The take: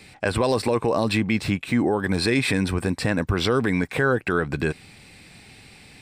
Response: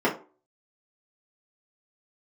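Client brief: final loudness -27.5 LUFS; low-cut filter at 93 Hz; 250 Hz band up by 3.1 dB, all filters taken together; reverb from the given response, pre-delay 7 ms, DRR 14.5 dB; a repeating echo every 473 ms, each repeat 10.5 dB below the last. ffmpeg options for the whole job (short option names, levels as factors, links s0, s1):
-filter_complex "[0:a]highpass=93,equalizer=f=250:t=o:g=4,aecho=1:1:473|946|1419:0.299|0.0896|0.0269,asplit=2[s0][s1];[1:a]atrim=start_sample=2205,adelay=7[s2];[s1][s2]afir=irnorm=-1:irlink=0,volume=0.0316[s3];[s0][s3]amix=inputs=2:normalize=0,volume=0.473"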